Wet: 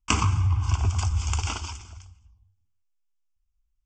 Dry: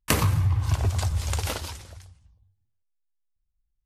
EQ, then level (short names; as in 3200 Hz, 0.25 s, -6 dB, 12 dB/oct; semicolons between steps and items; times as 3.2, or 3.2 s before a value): steep low-pass 8200 Hz 96 dB/oct; bell 140 Hz -13 dB 0.5 oct; fixed phaser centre 2700 Hz, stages 8; +3.0 dB